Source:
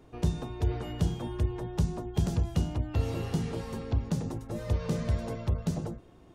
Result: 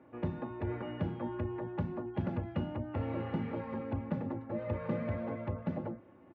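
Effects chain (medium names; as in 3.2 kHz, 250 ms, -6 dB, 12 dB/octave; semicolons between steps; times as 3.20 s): elliptic band-pass 110–2200 Hz, stop band 60 dB; peaking EQ 310 Hz -5.5 dB 0.21 oct; comb 3.5 ms, depth 64%; trim -1 dB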